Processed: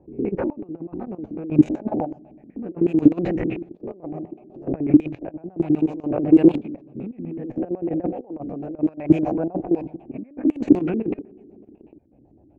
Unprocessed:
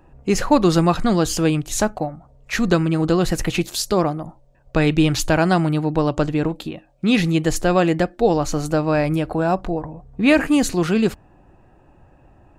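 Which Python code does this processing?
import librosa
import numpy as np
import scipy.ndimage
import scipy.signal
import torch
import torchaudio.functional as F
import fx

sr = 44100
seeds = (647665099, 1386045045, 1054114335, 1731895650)

p1 = fx.spec_swells(x, sr, rise_s=0.36)
p2 = scipy.signal.sosfilt(scipy.signal.butter(2, 62.0, 'highpass', fs=sr, output='sos'), p1)
p3 = fx.low_shelf(p2, sr, hz=340.0, db=-9.5)
p4 = p3 + fx.echo_wet_highpass(p3, sr, ms=822, feedback_pct=37, hz=4600.0, wet_db=-4.5, dry=0)
p5 = fx.rev_fdn(p4, sr, rt60_s=1.9, lf_ratio=1.25, hf_ratio=0.4, size_ms=24.0, drr_db=15.5)
p6 = fx.over_compress(p5, sr, threshold_db=-25.0, ratio=-0.5)
p7 = fx.filter_lfo_lowpass(p6, sr, shape='square', hz=8.0, low_hz=310.0, high_hz=2400.0, q=5.0)
p8 = fx.band_shelf(p7, sr, hz=2300.0, db=-15.0, octaves=2.5)
p9 = fx.level_steps(p8, sr, step_db=15)
p10 = fx.env_lowpass(p9, sr, base_hz=450.0, full_db=-15.5)
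p11 = fx.chopper(p10, sr, hz=0.66, depth_pct=60, duty_pct=35)
p12 = fx.record_warp(p11, sr, rpm=33.33, depth_cents=100.0)
y = p12 * librosa.db_to_amplitude(7.5)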